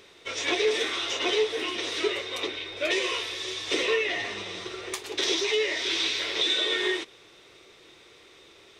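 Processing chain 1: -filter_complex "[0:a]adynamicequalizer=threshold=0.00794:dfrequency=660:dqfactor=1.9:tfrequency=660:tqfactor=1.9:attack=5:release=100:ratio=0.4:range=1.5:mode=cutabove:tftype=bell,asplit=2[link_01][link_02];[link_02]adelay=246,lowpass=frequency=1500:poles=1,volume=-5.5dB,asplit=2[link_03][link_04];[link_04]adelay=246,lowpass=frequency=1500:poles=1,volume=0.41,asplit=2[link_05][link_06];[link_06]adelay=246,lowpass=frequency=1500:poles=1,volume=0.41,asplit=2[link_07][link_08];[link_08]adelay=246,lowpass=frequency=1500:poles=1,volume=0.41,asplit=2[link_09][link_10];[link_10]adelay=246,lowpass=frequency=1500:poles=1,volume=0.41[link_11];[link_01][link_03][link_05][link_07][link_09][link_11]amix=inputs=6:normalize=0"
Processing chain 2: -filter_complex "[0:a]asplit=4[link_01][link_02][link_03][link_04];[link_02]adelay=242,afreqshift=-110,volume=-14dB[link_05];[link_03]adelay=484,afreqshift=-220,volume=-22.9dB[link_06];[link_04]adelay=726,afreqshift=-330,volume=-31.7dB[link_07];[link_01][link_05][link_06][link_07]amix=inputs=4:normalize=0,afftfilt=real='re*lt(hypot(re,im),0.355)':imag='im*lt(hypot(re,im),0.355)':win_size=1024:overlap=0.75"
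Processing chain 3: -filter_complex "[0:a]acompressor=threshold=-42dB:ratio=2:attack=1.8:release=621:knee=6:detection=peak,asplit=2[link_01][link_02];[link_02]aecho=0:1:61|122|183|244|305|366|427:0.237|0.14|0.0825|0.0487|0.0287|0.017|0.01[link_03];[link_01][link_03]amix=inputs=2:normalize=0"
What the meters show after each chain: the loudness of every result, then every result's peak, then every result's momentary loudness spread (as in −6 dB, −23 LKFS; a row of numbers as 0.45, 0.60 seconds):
−26.5, −28.0, −37.5 LKFS; −12.0, −12.5, −23.5 dBFS; 10, 9, 16 LU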